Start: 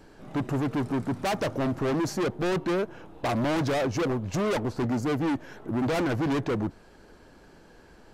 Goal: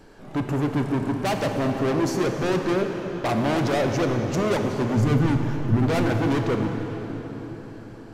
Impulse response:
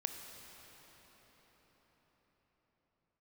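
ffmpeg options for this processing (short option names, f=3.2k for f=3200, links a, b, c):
-filter_complex "[0:a]asplit=3[a][b][c];[a]afade=t=out:st=4.96:d=0.02[d];[b]asubboost=boost=6:cutoff=160,afade=t=in:st=4.96:d=0.02,afade=t=out:st=5.76:d=0.02[e];[c]afade=t=in:st=5.76:d=0.02[f];[d][e][f]amix=inputs=3:normalize=0[g];[1:a]atrim=start_sample=2205,asetrate=57330,aresample=44100[h];[g][h]afir=irnorm=-1:irlink=0,volume=6dB"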